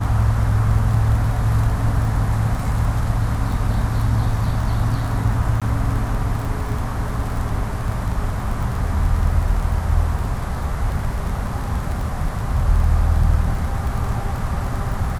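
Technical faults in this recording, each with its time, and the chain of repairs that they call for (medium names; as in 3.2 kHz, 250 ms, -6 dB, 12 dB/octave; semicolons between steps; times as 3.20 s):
crackle 23 per s -25 dBFS
5.60–5.62 s: dropout 16 ms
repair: de-click; interpolate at 5.60 s, 16 ms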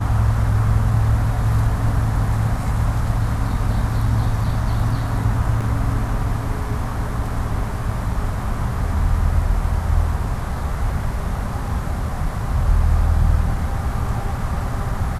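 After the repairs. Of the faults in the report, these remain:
nothing left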